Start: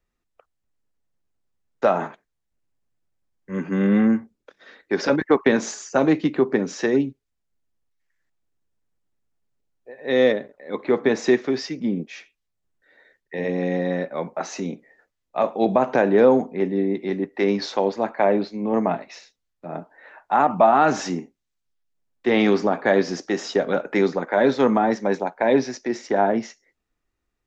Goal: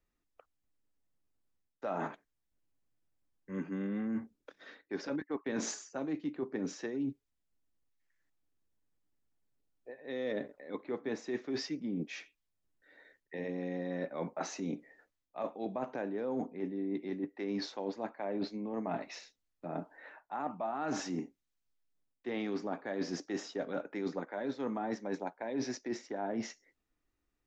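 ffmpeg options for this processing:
ffmpeg -i in.wav -af "equalizer=frequency=290:width=6.3:gain=6.5,areverse,acompressor=threshold=-28dB:ratio=12,areverse,volume=-5dB" out.wav

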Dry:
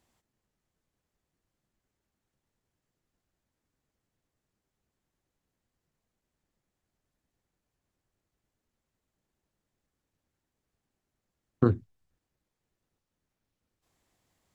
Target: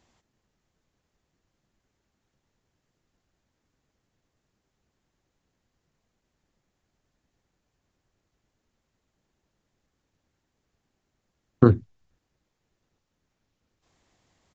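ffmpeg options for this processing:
ffmpeg -i in.wav -af "aresample=16000,aresample=44100,volume=7dB" out.wav

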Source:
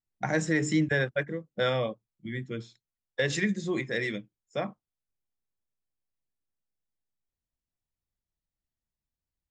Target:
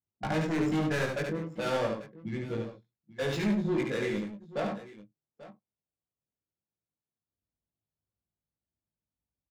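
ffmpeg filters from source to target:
ffmpeg -i in.wav -filter_complex "[0:a]highpass=frequency=65:width=0.5412,highpass=frequency=65:width=1.3066,bandreject=frequency=1900:width=5.9,asettb=1/sr,asplit=3[link_01][link_02][link_03];[link_01]atrim=end=2.554[link_04];[link_02]atrim=start=2.55:end=4.09,asetpts=PTS-STARTPTS,afade=type=in:duration=0.004:curve=qsin,afade=type=out:start_time=1.536:duration=0.004:curve=qsin,acrossover=split=500|3000[link_05][link_06][link_07];[link_06]acompressor=threshold=-34dB:ratio=6[link_08];[link_05][link_08][link_07]amix=inputs=3:normalize=0[link_09];[link_03]atrim=start=4.086[link_10];[link_04][link_09]acrossfade=duration=0.004:curve1=hsin:curve2=qsin[link_11];[link_11][link_10]acrossfade=duration=0.004:curve1=qsin:curve2=hsin,asoftclip=type=hard:threshold=-29dB,adynamicsmooth=sensitivity=7:basefreq=1100,asplit=2[link_12][link_13];[link_13]adelay=19,volume=-3dB[link_14];[link_12][link_14]amix=inputs=2:normalize=0,aecho=1:1:72|102|177|839:0.631|0.141|0.106|0.141" out.wav

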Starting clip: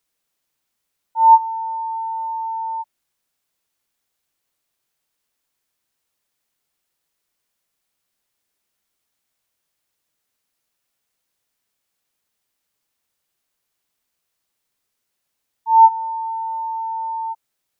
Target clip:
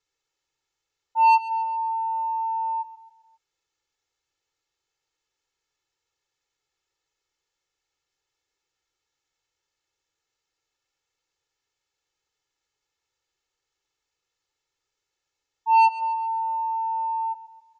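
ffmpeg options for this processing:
ffmpeg -i in.wav -af "aresample=16000,asoftclip=type=tanh:threshold=-13dB,aresample=44100,aecho=1:1:2.3:1,aecho=1:1:134|268|402|536:0.2|0.0938|0.0441|0.0207,volume=-5.5dB" out.wav

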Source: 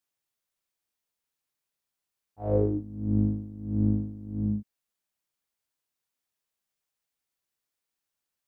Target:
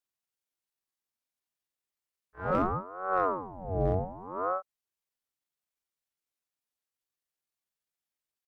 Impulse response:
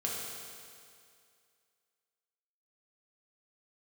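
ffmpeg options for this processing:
-af "asoftclip=type=hard:threshold=-16dB,asetrate=78577,aresample=44100,atempo=0.561231,aeval=exprs='val(0)*sin(2*PI*590*n/s+590*0.6/0.65*sin(2*PI*0.65*n/s))':channel_layout=same"

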